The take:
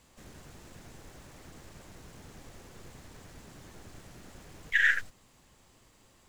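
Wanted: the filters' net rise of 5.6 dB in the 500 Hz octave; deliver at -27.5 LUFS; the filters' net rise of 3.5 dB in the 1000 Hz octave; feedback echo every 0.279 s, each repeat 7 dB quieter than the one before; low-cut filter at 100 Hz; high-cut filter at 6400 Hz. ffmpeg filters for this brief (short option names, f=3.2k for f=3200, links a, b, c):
-af "highpass=100,lowpass=6.4k,equalizer=f=500:t=o:g=6,equalizer=f=1k:t=o:g=4,aecho=1:1:279|558|837|1116|1395:0.447|0.201|0.0905|0.0407|0.0183,volume=-0.5dB"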